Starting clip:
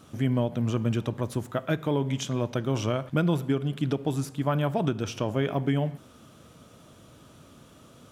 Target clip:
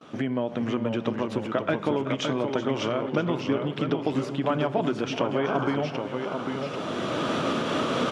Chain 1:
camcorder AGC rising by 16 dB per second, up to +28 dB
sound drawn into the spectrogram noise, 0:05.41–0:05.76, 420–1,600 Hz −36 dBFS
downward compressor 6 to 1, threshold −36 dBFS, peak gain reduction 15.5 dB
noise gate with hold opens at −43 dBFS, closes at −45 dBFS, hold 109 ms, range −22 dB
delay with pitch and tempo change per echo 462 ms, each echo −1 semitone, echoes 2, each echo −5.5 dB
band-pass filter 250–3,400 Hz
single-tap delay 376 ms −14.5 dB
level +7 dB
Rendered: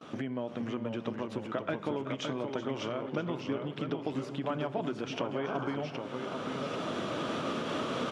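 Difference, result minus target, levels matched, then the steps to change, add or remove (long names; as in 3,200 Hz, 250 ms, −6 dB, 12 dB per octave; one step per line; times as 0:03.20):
downward compressor: peak gain reduction +8.5 dB
change: downward compressor 6 to 1, threshold −26 dBFS, peak gain reduction 7.5 dB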